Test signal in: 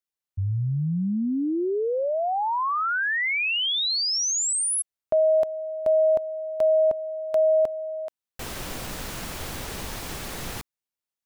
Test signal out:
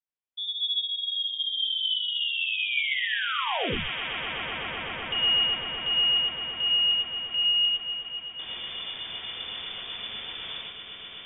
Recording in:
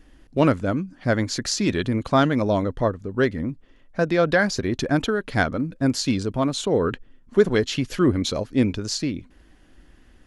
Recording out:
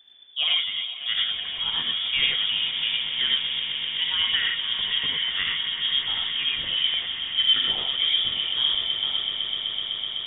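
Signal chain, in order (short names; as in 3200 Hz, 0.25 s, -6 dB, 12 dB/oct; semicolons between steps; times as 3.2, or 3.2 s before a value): swelling echo 0.126 s, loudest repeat 8, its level -14 dB; inverted band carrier 3500 Hz; non-linear reverb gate 0.13 s rising, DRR -1 dB; gain -8.5 dB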